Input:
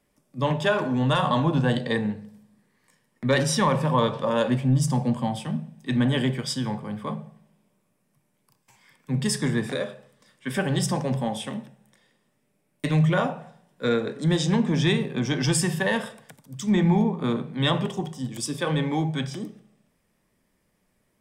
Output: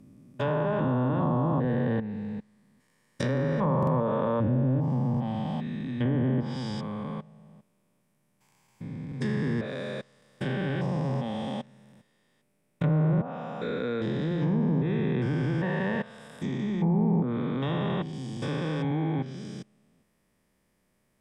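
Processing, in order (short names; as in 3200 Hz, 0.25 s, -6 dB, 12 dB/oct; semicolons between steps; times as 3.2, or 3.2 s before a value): stepped spectrum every 0.4 s; treble ducked by the level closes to 950 Hz, closed at -21 dBFS; stuck buffer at 3.78/9.07, samples 2048, times 1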